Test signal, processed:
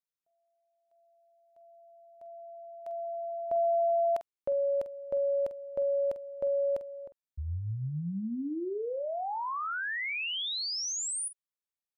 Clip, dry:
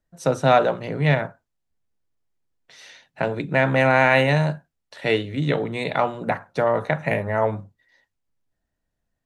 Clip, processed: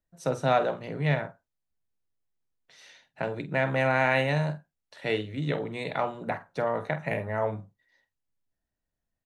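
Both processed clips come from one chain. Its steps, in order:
double-tracking delay 47 ms −13 dB
level −7.5 dB

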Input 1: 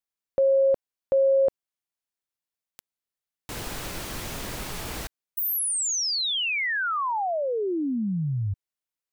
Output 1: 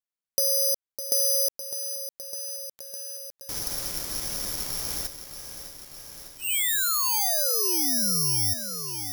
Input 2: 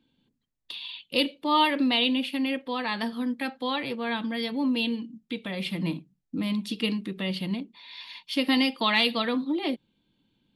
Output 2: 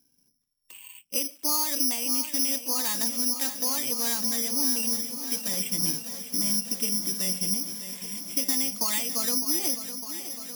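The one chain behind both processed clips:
downward compressor 6 to 1, threshold −26 dBFS
bad sample-rate conversion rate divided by 8×, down filtered, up zero stuff
feedback echo at a low word length 606 ms, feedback 80%, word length 6 bits, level −10.5 dB
level −5.5 dB

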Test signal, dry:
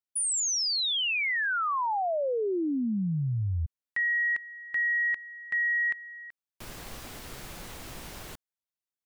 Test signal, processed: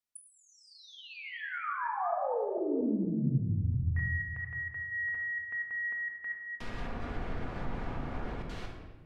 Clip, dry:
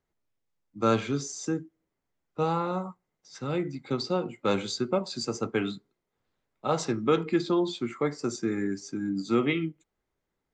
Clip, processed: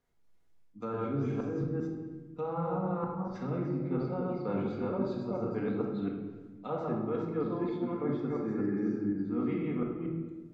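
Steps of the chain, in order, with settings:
delay that plays each chunk backwards 234 ms, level −1.5 dB
reversed playback
downward compressor 10 to 1, threshold −32 dBFS
reversed playback
treble cut that deepens with the level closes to 1,200 Hz, closed at −35.5 dBFS
rectangular room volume 990 cubic metres, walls mixed, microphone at 1.8 metres

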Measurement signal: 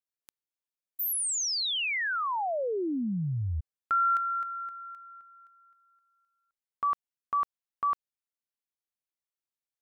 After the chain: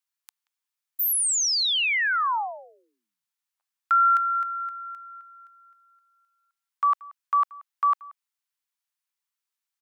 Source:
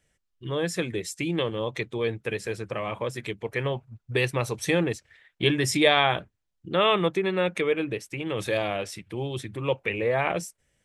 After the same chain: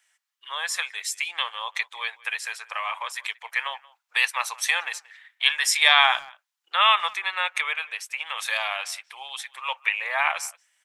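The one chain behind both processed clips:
Butterworth high-pass 850 Hz 36 dB per octave
far-end echo of a speakerphone 180 ms, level −22 dB
level +6.5 dB

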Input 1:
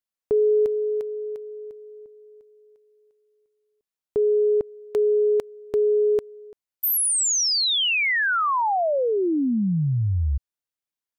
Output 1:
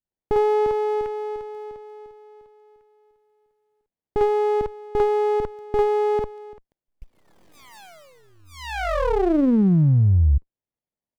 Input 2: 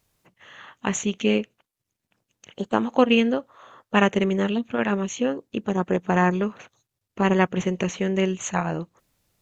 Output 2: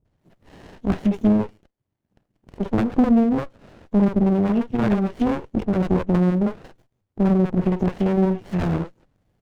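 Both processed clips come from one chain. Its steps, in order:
high-shelf EQ 3,100 Hz −7 dB
three-band delay without the direct sound lows, mids, highs 50/190 ms, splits 460/5,300 Hz
treble cut that deepens with the level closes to 360 Hz, closed at −17.5 dBFS
windowed peak hold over 33 samples
level +6.5 dB

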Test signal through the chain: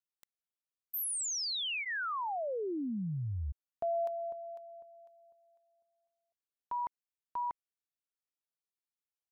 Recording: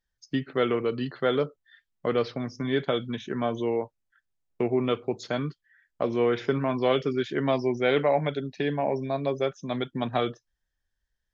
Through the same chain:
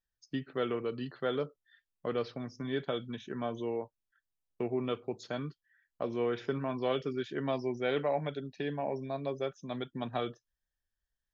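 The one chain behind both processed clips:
notch filter 2,100 Hz, Q 13
level −8 dB

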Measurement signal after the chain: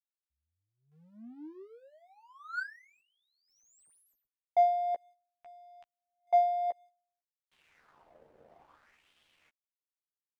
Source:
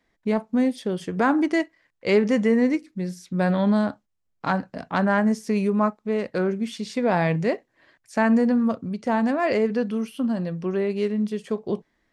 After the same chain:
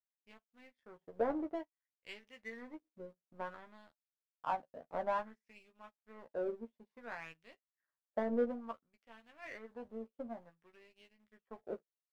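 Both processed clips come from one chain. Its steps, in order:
parametric band 4,400 Hz −5 dB 2.3 octaves
LFO wah 0.57 Hz 520–3,200 Hz, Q 3.7
in parallel at −5.5 dB: centre clipping without the shift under −49 dBFS
on the sum: power curve on the samples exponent 1.4
spectral tilt −1.5 dB per octave
double-tracking delay 13 ms −6 dB
level −8 dB

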